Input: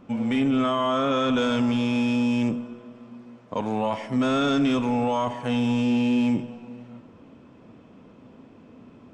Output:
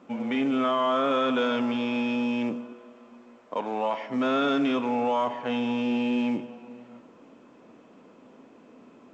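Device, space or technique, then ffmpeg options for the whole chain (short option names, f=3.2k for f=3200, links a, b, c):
telephone: -filter_complex "[0:a]asettb=1/sr,asplit=3[a][b][c];[a]atrim=end=2.724[d];[b]atrim=start=2.72:end=4.09,asetpts=PTS-STARTPTS,afade=t=in:d=0.004:c=qsin,afade=t=out:st=1.366:d=0.004:c=qsin,highpass=f=260:p=1[e];[c]atrim=start=4.086[f];[d][e]acrossfade=d=0.004:c1=hsin:c2=qsin[g];[g][f]acrossfade=d=0.004:c1=qsin:c2=hsin,highpass=280,lowpass=3.4k" -ar 16000 -c:a pcm_alaw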